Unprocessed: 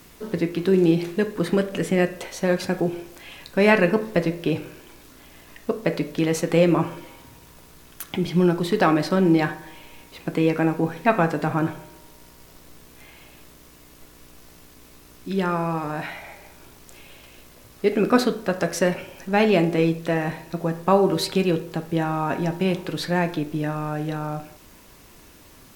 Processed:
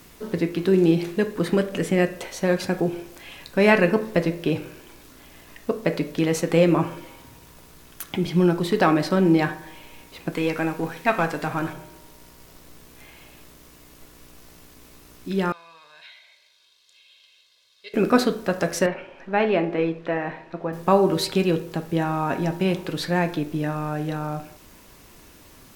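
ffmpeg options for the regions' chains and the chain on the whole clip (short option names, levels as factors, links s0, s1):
-filter_complex "[0:a]asettb=1/sr,asplit=3[s0][s1][s2];[s0]atrim=end=10.324[s3];[s1]atrim=start=10.32:end=11.73,asetpts=PTS-STARTPTS,afade=t=in:d=0.004:c=qsin,afade=t=out:st=1.406:d=0.004:c=qsin,aeval=exprs='if(lt(val(0),0),0.708*val(0),val(0))':c=same,tiltshelf=f=850:g=-4[s4];[s2]atrim=start=11.726[s5];[s3][s4]acrossfade=d=0.004:c1=hsin:c2=qsin[s6];[s6][s5]acrossfade=d=0.004:c1=qsin:c2=hsin,asettb=1/sr,asplit=3[s7][s8][s9];[s7]atrim=end=15.524[s10];[s8]atrim=start=15.52:end=17.94,asetpts=PTS-STARTPTS,afade=t=in:d=0.004:c=qsin,afade=t=out:st=2.416:d=0.004:c=qsin,bandpass=f=3800:t=q:w=3.7,aecho=1:1:1.9:0.72,atrim=end_sample=106722[s11];[s9]atrim=start=17.936[s12];[s10][s11]acrossfade=d=0.004:c1=hsin:c2=qsin[s13];[s13][s12]acrossfade=d=0.004:c1=qsin:c2=hsin,asettb=1/sr,asplit=3[s14][s15][s16];[s14]atrim=end=18.864[s17];[s15]atrim=start=18.86:end=20.73,asetpts=PTS-STARTPTS,afade=t=in:d=0.004:c=qsin,afade=t=out:st=1.866:d=0.004:c=qsin,lowpass=2400,equalizer=f=87:t=o:w=2.4:g=-13[s18];[s16]atrim=start=20.726[s19];[s17][s18]acrossfade=d=0.004:c1=hsin:c2=qsin[s20];[s20][s19]acrossfade=d=0.004:c1=qsin:c2=hsin"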